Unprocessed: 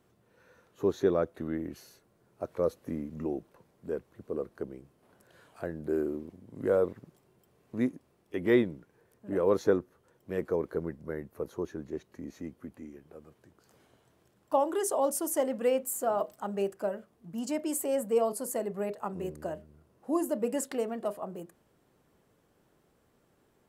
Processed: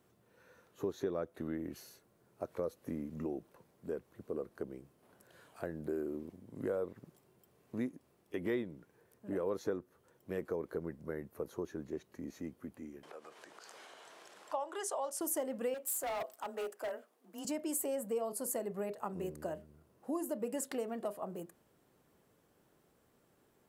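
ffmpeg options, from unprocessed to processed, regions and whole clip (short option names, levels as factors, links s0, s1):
-filter_complex "[0:a]asettb=1/sr,asplit=3[s0][s1][s2];[s0]atrim=end=13.034[s3];[s1]atrim=start=13.03:end=15.21,asetpts=PTS-STARTPTS,afade=t=in:d=0.004:c=qsin,afade=t=out:st=2.176:d=0.004:c=qsin,highpass=670,lowpass=7000,acompressor=mode=upward:threshold=0.0141:ratio=2.5:attack=3.2:release=140:knee=2.83:detection=peak[s4];[s2]atrim=start=15.206[s5];[s3][s4]acrossfade=d=0.004:c1=hsin:c2=qsin[s6];[s6][s5]acrossfade=d=0.004:c1=qsin:c2=hsin,asettb=1/sr,asplit=3[s7][s8][s9];[s7]atrim=end=15.744[s10];[s8]atrim=start=15.74:end=17.45,asetpts=PTS-STARTPTS,afade=t=in:d=0.004:c=qsin,afade=t=out:st=1.706:d=0.004:c=qsin,highpass=400,afreqshift=22,asoftclip=type=hard:threshold=0.0251[s11];[s9]atrim=start=17.446[s12];[s10][s11]acrossfade=d=0.004:c1=hsin:c2=qsin[s13];[s13][s12]acrossfade=d=0.004:c1=qsin:c2=hsin,lowshelf=f=65:g=-6,acompressor=threshold=0.0224:ratio=3,highshelf=f=9700:g=5.5,volume=0.794"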